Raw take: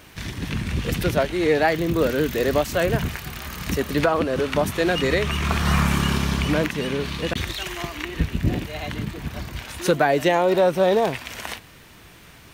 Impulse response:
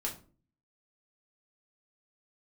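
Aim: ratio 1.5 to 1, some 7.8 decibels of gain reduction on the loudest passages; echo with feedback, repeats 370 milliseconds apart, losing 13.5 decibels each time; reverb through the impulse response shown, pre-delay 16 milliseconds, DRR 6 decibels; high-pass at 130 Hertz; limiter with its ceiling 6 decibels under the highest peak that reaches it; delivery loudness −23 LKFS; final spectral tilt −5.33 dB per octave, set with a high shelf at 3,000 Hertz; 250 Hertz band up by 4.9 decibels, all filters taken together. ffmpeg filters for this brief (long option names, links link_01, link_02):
-filter_complex "[0:a]highpass=130,equalizer=frequency=250:width_type=o:gain=7.5,highshelf=frequency=3000:gain=-7,acompressor=threshold=-35dB:ratio=1.5,alimiter=limit=-18.5dB:level=0:latency=1,aecho=1:1:370|740:0.211|0.0444,asplit=2[link_01][link_02];[1:a]atrim=start_sample=2205,adelay=16[link_03];[link_02][link_03]afir=irnorm=-1:irlink=0,volume=-8dB[link_04];[link_01][link_04]amix=inputs=2:normalize=0,volume=5.5dB"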